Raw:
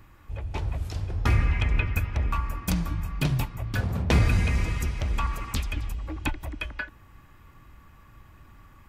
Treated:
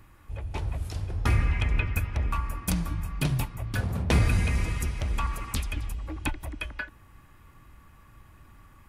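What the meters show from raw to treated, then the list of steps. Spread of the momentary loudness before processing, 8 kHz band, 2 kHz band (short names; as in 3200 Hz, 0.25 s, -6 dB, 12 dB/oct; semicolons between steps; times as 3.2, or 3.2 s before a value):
11 LU, +2.0 dB, -1.5 dB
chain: bell 10000 Hz +8.5 dB 0.42 oct; gain -1.5 dB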